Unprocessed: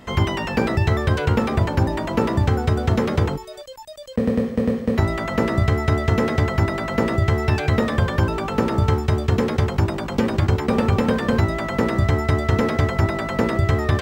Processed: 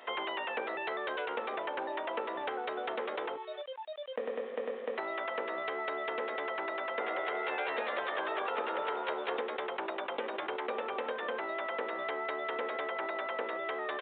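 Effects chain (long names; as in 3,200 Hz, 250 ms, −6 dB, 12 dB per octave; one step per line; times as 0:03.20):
high-pass filter 440 Hz 24 dB per octave
downward compressor, threshold −30 dBFS, peak gain reduction 11 dB
0:06.79–0:09.41: echo with shifted repeats 186 ms, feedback 31%, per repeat +83 Hz, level −3 dB
downsampling to 8,000 Hz
level −3 dB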